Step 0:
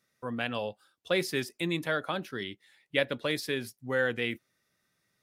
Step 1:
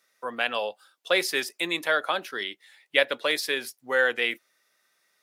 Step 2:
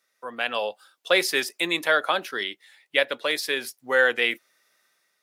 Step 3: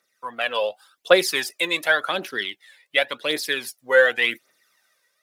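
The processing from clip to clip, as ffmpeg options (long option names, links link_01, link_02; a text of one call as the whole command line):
ffmpeg -i in.wav -af "highpass=540,volume=7.5dB" out.wav
ffmpeg -i in.wav -af "dynaudnorm=framelen=140:gausssize=7:maxgain=7.5dB,volume=-3.5dB" out.wav
ffmpeg -i in.wav -af "aphaser=in_gain=1:out_gain=1:delay=2.1:decay=0.59:speed=0.89:type=triangular" out.wav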